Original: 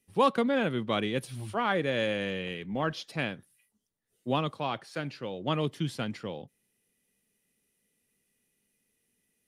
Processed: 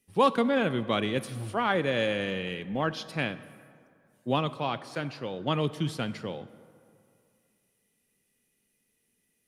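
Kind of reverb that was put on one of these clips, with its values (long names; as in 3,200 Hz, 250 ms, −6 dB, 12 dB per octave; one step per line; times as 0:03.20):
dense smooth reverb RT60 2.4 s, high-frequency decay 0.5×, DRR 14.5 dB
level +1.5 dB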